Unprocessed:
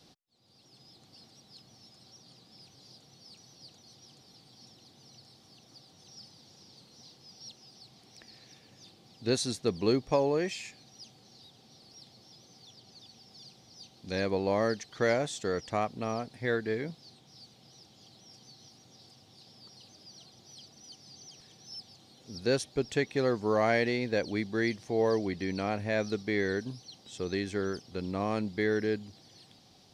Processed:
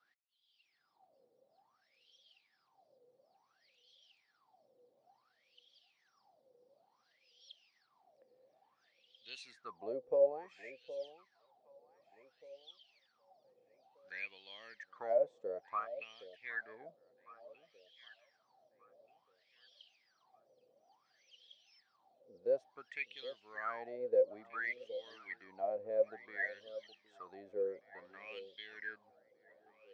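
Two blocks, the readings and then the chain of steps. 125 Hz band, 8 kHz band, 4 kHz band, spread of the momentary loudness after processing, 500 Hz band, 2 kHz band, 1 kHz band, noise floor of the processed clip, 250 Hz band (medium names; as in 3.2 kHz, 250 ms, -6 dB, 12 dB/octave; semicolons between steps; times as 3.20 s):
under -30 dB, under -25 dB, -15.0 dB, 22 LU, -7.0 dB, -8.0 dB, -10.0 dB, -78 dBFS, -26.0 dB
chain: wah-wah 0.57 Hz 490–3300 Hz, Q 20; echo whose repeats swap between lows and highs 766 ms, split 830 Hz, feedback 52%, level -14 dB; trim +7.5 dB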